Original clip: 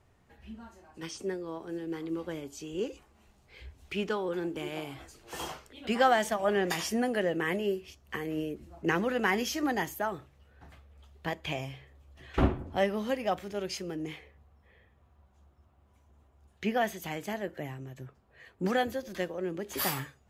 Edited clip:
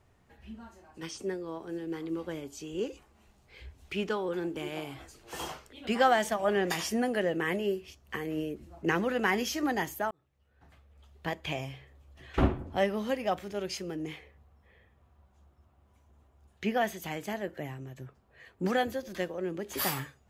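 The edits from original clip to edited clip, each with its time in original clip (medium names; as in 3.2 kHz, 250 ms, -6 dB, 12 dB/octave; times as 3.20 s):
10.11–11.26 s: fade in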